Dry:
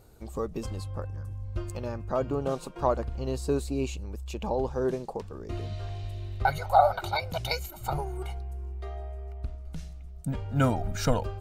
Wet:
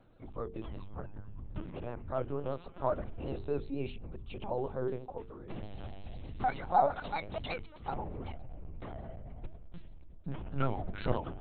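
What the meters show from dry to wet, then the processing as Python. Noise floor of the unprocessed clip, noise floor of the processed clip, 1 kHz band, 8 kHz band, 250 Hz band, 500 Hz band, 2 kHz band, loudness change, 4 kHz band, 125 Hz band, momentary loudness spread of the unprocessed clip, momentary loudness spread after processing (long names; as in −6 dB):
−43 dBFS, −51 dBFS, −5.5 dB, below −35 dB, −7.5 dB, −6.5 dB, −8.0 dB, −7.0 dB, −11.5 dB, −9.0 dB, 13 LU, 13 LU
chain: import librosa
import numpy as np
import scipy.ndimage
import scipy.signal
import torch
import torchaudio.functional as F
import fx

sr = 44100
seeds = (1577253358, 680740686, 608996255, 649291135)

y = fx.lpc_vocoder(x, sr, seeds[0], excitation='pitch_kept', order=10)
y = fx.vibrato(y, sr, rate_hz=8.0, depth_cents=74.0)
y = fx.hum_notches(y, sr, base_hz=50, count=9)
y = F.gain(torch.from_numpy(y), -6.0).numpy()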